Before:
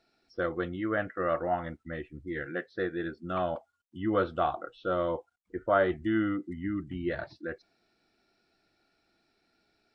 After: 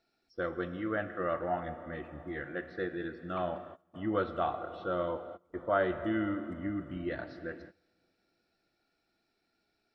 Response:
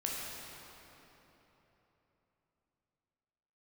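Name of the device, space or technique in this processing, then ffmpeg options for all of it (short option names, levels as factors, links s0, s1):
keyed gated reverb: -filter_complex "[0:a]asplit=3[s0][s1][s2];[1:a]atrim=start_sample=2205[s3];[s1][s3]afir=irnorm=-1:irlink=0[s4];[s2]apad=whole_len=438781[s5];[s4][s5]sidechaingate=range=0.0708:threshold=0.00158:ratio=16:detection=peak,volume=0.335[s6];[s0][s6]amix=inputs=2:normalize=0,volume=0.501"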